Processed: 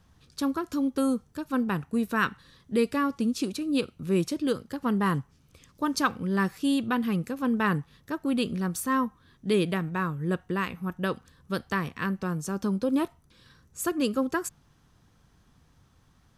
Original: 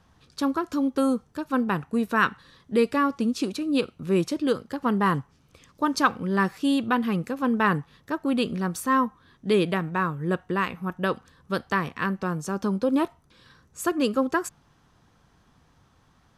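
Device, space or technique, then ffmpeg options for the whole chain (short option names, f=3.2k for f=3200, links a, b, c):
smiley-face EQ: -af "lowshelf=f=150:g=5.5,equalizer=f=850:t=o:w=1.6:g=-3,highshelf=f=7.9k:g=7.5,volume=-3dB"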